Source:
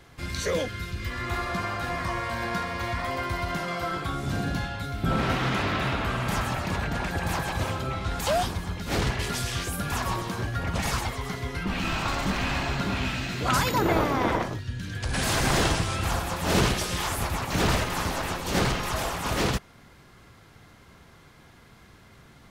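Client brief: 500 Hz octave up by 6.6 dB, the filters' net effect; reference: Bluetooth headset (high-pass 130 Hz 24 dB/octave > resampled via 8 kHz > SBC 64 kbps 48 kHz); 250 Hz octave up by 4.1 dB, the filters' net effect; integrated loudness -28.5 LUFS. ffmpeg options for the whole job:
-af "highpass=f=130:w=0.5412,highpass=f=130:w=1.3066,equalizer=f=250:t=o:g=3.5,equalizer=f=500:t=o:g=7.5,aresample=8000,aresample=44100,volume=0.75" -ar 48000 -c:a sbc -b:a 64k

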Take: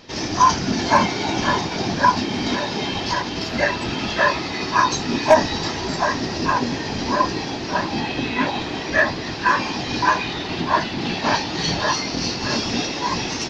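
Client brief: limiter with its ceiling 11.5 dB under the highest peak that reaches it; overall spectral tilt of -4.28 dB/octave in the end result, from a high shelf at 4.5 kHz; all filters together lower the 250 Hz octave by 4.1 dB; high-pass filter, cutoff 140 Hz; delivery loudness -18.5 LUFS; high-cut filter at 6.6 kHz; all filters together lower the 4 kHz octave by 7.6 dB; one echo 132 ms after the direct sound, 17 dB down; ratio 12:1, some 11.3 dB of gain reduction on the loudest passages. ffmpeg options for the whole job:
-af "highpass=140,lowpass=6600,equalizer=f=250:t=o:g=-4.5,equalizer=f=4000:t=o:g=-7,highshelf=f=4500:g=-3.5,acompressor=threshold=0.0891:ratio=12,alimiter=limit=0.0708:level=0:latency=1,aecho=1:1:132:0.141,volume=4.47"

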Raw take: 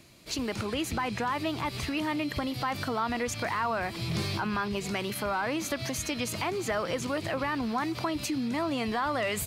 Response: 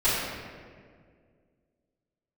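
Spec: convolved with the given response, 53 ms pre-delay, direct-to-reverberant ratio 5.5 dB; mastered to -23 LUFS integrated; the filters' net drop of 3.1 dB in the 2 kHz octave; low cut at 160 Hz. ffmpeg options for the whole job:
-filter_complex "[0:a]highpass=160,equalizer=f=2000:t=o:g=-4,asplit=2[s0][s1];[1:a]atrim=start_sample=2205,adelay=53[s2];[s1][s2]afir=irnorm=-1:irlink=0,volume=0.0944[s3];[s0][s3]amix=inputs=2:normalize=0,volume=2.51"

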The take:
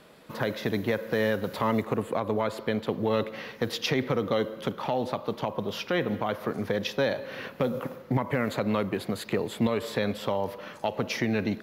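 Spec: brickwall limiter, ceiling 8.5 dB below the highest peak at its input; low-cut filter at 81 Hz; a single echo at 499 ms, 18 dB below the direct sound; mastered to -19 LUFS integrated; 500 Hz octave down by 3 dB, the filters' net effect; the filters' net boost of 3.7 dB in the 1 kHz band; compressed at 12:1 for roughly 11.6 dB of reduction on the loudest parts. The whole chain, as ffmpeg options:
-af "highpass=81,equalizer=f=500:t=o:g=-5,equalizer=f=1000:t=o:g=6,acompressor=threshold=0.0224:ratio=12,alimiter=level_in=1.5:limit=0.0631:level=0:latency=1,volume=0.668,aecho=1:1:499:0.126,volume=10.6"

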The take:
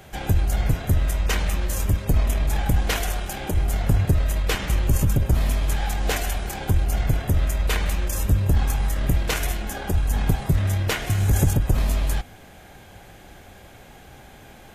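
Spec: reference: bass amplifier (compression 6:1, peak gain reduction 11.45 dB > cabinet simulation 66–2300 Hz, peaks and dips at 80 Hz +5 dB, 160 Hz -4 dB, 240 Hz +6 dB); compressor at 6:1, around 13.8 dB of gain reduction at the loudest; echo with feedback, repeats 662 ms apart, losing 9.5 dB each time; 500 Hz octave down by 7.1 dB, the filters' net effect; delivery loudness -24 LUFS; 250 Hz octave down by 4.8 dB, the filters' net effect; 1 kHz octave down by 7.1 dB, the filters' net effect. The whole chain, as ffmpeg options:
-af "equalizer=f=250:t=o:g=-7.5,equalizer=f=500:t=o:g=-5,equalizer=f=1000:t=o:g=-7.5,acompressor=threshold=0.0316:ratio=6,aecho=1:1:662|1324|1986|2648:0.335|0.111|0.0365|0.012,acompressor=threshold=0.0126:ratio=6,highpass=f=66:w=0.5412,highpass=f=66:w=1.3066,equalizer=f=80:t=q:w=4:g=5,equalizer=f=160:t=q:w=4:g=-4,equalizer=f=240:t=q:w=4:g=6,lowpass=f=2300:w=0.5412,lowpass=f=2300:w=1.3066,volume=12.6"

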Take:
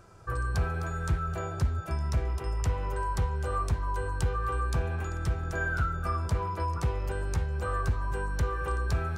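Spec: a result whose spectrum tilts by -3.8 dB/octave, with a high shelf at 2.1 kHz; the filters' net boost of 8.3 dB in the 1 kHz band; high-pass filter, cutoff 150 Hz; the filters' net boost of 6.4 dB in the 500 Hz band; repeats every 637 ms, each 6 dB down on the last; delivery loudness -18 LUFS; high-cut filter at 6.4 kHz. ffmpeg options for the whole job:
-af "highpass=150,lowpass=6400,equalizer=f=500:t=o:g=5.5,equalizer=f=1000:t=o:g=7.5,highshelf=f=2100:g=5,aecho=1:1:637|1274|1911|2548|3185|3822:0.501|0.251|0.125|0.0626|0.0313|0.0157,volume=3.16"

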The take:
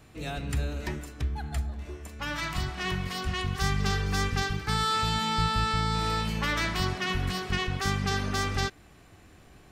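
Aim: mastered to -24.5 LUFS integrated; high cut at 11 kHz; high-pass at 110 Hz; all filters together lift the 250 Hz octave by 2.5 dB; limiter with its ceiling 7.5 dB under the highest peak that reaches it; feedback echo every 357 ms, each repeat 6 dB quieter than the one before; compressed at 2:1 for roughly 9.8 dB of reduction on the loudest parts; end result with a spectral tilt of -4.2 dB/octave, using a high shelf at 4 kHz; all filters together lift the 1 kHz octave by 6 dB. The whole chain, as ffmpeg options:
-af "highpass=110,lowpass=11000,equalizer=f=250:t=o:g=4,equalizer=f=1000:t=o:g=7.5,highshelf=f=4000:g=4.5,acompressor=threshold=0.0112:ratio=2,alimiter=level_in=1.5:limit=0.0631:level=0:latency=1,volume=0.668,aecho=1:1:357|714|1071|1428|1785|2142:0.501|0.251|0.125|0.0626|0.0313|0.0157,volume=3.98"

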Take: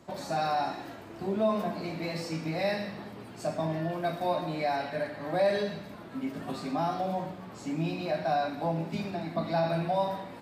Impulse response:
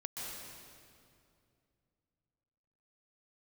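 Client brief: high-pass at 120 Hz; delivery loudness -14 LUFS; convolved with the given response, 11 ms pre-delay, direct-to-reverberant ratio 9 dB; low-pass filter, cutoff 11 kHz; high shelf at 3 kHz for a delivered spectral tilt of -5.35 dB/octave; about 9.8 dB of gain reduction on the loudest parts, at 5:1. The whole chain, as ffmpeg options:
-filter_complex "[0:a]highpass=120,lowpass=11000,highshelf=f=3000:g=-4,acompressor=threshold=0.0224:ratio=5,asplit=2[s0][s1];[1:a]atrim=start_sample=2205,adelay=11[s2];[s1][s2]afir=irnorm=-1:irlink=0,volume=0.335[s3];[s0][s3]amix=inputs=2:normalize=0,volume=14.1"

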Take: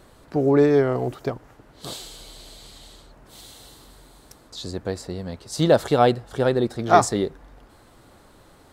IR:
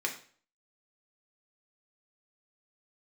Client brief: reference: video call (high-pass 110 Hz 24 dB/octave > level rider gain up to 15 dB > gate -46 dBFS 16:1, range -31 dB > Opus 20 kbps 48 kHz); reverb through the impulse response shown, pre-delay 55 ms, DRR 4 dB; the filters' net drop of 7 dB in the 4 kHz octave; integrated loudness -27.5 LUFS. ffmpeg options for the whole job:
-filter_complex "[0:a]equalizer=f=4000:t=o:g=-8.5,asplit=2[s0][s1];[1:a]atrim=start_sample=2205,adelay=55[s2];[s1][s2]afir=irnorm=-1:irlink=0,volume=0.335[s3];[s0][s3]amix=inputs=2:normalize=0,highpass=f=110:w=0.5412,highpass=f=110:w=1.3066,dynaudnorm=m=5.62,agate=range=0.0282:threshold=0.00501:ratio=16,volume=0.447" -ar 48000 -c:a libopus -b:a 20k

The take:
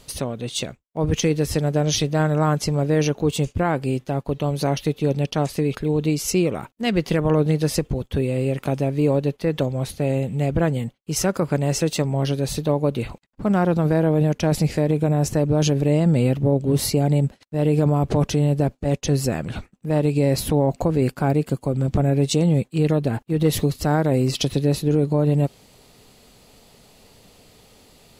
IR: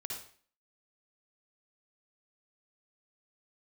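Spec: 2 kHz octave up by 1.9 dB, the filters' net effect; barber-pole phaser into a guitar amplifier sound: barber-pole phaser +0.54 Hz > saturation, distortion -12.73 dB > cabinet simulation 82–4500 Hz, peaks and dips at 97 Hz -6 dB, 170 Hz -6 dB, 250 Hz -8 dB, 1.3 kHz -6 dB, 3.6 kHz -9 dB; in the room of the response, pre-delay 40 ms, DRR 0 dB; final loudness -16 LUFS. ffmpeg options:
-filter_complex "[0:a]equalizer=f=2000:t=o:g=4.5,asplit=2[s0][s1];[1:a]atrim=start_sample=2205,adelay=40[s2];[s1][s2]afir=irnorm=-1:irlink=0,volume=1.06[s3];[s0][s3]amix=inputs=2:normalize=0,asplit=2[s4][s5];[s5]afreqshift=0.54[s6];[s4][s6]amix=inputs=2:normalize=1,asoftclip=threshold=0.133,highpass=82,equalizer=f=97:t=q:w=4:g=-6,equalizer=f=170:t=q:w=4:g=-6,equalizer=f=250:t=q:w=4:g=-8,equalizer=f=1300:t=q:w=4:g=-6,equalizer=f=3600:t=q:w=4:g=-9,lowpass=f=4500:w=0.5412,lowpass=f=4500:w=1.3066,volume=3.55"

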